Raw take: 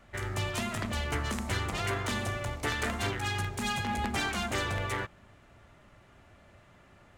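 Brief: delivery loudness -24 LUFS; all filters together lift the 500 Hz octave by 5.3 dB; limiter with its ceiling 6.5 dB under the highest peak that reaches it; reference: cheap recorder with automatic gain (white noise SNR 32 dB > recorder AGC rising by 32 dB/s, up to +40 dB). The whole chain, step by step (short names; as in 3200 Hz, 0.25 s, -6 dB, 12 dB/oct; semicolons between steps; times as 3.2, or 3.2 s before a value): bell 500 Hz +7 dB; limiter -22 dBFS; white noise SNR 32 dB; recorder AGC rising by 32 dB/s, up to +40 dB; gain +9.5 dB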